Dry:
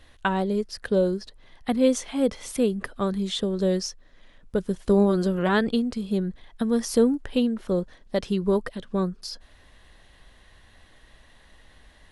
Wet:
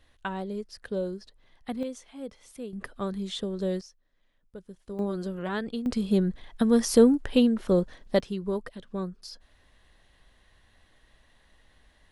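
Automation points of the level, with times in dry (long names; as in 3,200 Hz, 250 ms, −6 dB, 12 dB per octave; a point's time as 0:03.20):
−9 dB
from 0:01.83 −16 dB
from 0:02.73 −6 dB
from 0:03.81 −18.5 dB
from 0:04.99 −9.5 dB
from 0:05.86 +2 dB
from 0:08.20 −7.5 dB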